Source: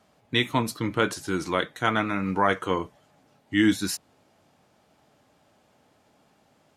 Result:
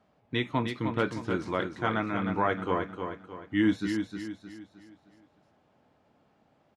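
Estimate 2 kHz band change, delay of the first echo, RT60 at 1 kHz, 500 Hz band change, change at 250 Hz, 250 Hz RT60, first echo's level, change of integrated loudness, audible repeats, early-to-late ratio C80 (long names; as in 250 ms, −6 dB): −5.5 dB, 309 ms, no reverb audible, −3.0 dB, −2.5 dB, no reverb audible, −6.5 dB, −4.5 dB, 4, no reverb audible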